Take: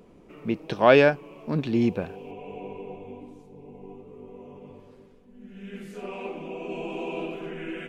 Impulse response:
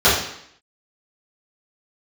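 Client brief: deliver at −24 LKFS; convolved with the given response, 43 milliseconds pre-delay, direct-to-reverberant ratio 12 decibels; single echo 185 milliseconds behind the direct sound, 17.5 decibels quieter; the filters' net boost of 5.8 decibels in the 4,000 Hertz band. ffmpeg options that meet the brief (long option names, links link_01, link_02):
-filter_complex "[0:a]equalizer=frequency=4000:width_type=o:gain=8,aecho=1:1:185:0.133,asplit=2[link_01][link_02];[1:a]atrim=start_sample=2205,adelay=43[link_03];[link_02][link_03]afir=irnorm=-1:irlink=0,volume=-36.5dB[link_04];[link_01][link_04]amix=inputs=2:normalize=0,volume=0.5dB"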